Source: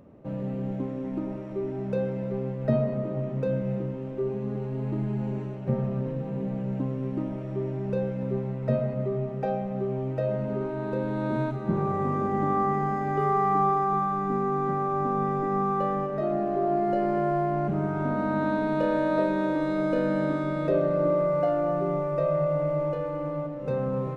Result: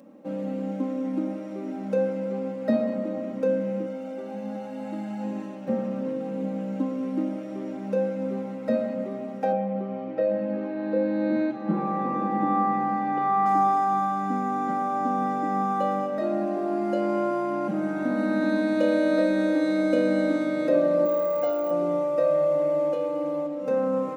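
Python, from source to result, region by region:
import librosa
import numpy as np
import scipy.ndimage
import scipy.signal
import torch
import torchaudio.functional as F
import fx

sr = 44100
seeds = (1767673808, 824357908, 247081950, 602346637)

y = fx.chain(x, sr, fx.peak_eq(hz=120.0, db=-7.0, octaves=1.4),
    fx.comb(ms=1.4, depth=0.62), at=(3.86, 5.24))
y = fx.chain(y, sr, fx.air_absorb(metres=230.0),
    fx.comb(ms=6.0, depth=0.54), at=(9.52, 13.46))
y = fx.chain(y, sr, fx.low_shelf(hz=490.0, db=-9.5),
    fx.resample_bad(factor=2, down='none', up='hold'), at=(21.05, 21.71))
y = scipy.signal.sosfilt(scipy.signal.butter(4, 170.0, 'highpass', fs=sr, output='sos'), y)
y = fx.bass_treble(y, sr, bass_db=0, treble_db=8)
y = y + 0.87 * np.pad(y, (int(3.7 * sr / 1000.0), 0))[:len(y)]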